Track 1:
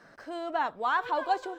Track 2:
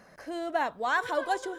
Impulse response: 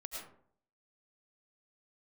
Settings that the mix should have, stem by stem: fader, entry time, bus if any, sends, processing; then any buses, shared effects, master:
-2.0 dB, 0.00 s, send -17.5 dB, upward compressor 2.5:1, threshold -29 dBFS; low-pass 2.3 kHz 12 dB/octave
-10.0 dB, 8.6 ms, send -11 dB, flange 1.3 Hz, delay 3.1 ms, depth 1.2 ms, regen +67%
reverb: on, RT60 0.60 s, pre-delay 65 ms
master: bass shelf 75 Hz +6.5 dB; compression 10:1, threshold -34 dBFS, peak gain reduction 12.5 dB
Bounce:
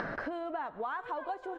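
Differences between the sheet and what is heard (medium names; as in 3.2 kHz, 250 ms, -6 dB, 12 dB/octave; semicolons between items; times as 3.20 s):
stem 1 -2.0 dB -> +7.5 dB; stem 2: polarity flipped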